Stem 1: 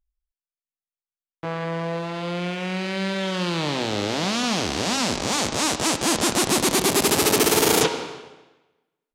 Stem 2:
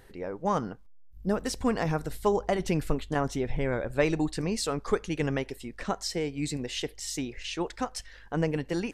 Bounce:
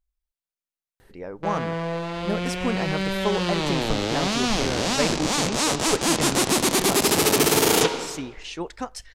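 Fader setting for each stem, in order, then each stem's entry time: -0.5 dB, 0.0 dB; 0.00 s, 1.00 s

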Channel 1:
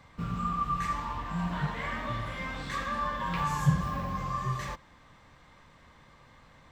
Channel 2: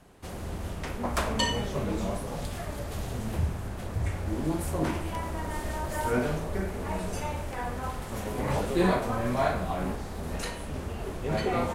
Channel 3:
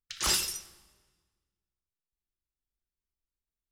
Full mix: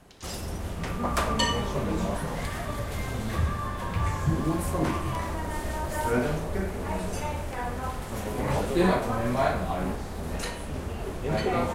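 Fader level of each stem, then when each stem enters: -3.5 dB, +1.5 dB, -13.5 dB; 0.60 s, 0.00 s, 0.00 s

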